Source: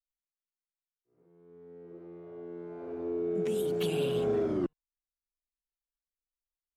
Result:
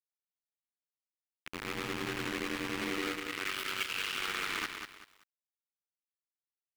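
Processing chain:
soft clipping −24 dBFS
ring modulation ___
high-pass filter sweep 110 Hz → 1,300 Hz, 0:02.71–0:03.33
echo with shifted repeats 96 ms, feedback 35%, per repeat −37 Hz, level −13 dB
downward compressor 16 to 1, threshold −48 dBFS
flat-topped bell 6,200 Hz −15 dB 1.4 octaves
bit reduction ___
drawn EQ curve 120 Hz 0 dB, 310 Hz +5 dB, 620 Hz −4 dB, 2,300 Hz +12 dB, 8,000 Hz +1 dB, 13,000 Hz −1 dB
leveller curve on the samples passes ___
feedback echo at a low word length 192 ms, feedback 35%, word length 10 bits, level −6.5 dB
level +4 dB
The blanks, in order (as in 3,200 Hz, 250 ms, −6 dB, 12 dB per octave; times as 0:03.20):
48 Hz, 8 bits, 2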